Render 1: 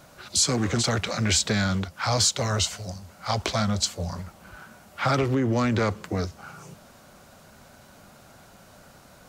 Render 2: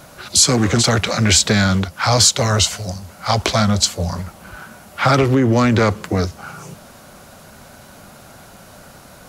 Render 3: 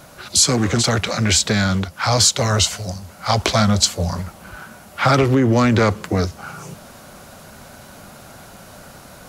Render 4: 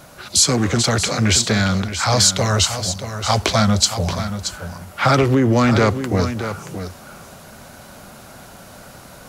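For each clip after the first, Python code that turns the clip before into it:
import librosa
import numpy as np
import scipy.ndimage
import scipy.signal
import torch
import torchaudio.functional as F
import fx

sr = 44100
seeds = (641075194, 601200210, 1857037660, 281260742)

y1 = fx.peak_eq(x, sr, hz=11000.0, db=6.5, octaves=0.22)
y1 = F.gain(torch.from_numpy(y1), 9.0).numpy()
y2 = fx.rider(y1, sr, range_db=3, speed_s=2.0)
y2 = F.gain(torch.from_numpy(y2), -2.0).numpy()
y3 = y2 + 10.0 ** (-10.0 / 20.0) * np.pad(y2, (int(628 * sr / 1000.0), 0))[:len(y2)]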